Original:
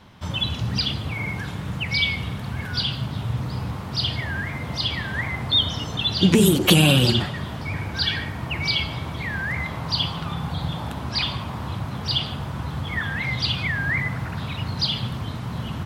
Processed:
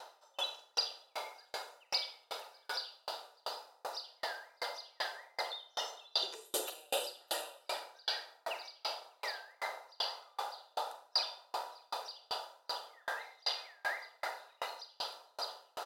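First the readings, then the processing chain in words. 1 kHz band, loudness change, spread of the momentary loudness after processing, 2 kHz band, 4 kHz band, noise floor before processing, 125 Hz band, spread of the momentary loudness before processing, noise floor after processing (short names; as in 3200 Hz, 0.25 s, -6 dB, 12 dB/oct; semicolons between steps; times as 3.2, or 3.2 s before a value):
-8.0 dB, -16.0 dB, 9 LU, -17.0 dB, -15.0 dB, -32 dBFS, under -40 dB, 13 LU, -69 dBFS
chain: notch comb 1100 Hz; reverse; upward compressor, threshold -28 dBFS; reverse; steep high-pass 510 Hz 36 dB/oct; band shelf 2300 Hz -10 dB 1.3 oct; echo 0.598 s -13.5 dB; compressor 10:1, threshold -29 dBFS, peak gain reduction 10.5 dB; Schroeder reverb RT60 1.3 s, combs from 32 ms, DRR 1 dB; dB-ramp tremolo decaying 2.6 Hz, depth 38 dB; gain +2 dB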